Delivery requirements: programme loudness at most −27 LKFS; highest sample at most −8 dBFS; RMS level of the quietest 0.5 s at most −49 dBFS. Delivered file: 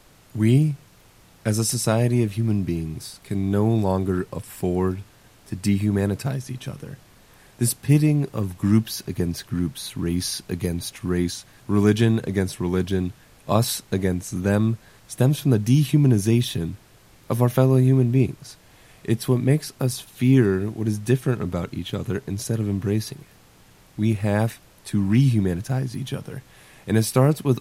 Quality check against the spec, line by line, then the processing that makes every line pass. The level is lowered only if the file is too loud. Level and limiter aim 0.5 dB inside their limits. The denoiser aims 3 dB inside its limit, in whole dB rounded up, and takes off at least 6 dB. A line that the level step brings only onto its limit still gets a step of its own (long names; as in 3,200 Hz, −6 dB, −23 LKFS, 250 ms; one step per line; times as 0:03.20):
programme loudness −22.5 LKFS: out of spec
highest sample −3.0 dBFS: out of spec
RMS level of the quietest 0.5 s −52 dBFS: in spec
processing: level −5 dB
brickwall limiter −8.5 dBFS